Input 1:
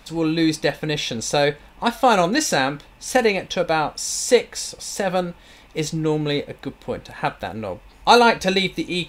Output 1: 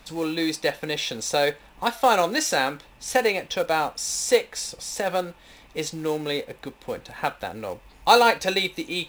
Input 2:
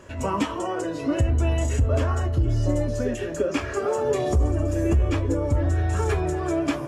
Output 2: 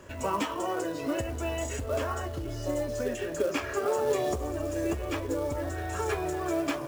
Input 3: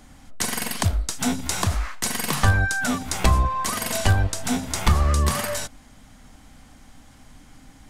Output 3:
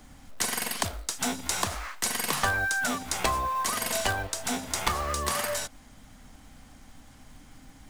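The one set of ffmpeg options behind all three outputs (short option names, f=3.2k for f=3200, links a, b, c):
-filter_complex "[0:a]acrossover=split=330[a][b];[a]acompressor=threshold=-40dB:ratio=2.5[c];[c][b]amix=inputs=2:normalize=0,acrusher=bits=5:mode=log:mix=0:aa=0.000001,volume=-2.5dB"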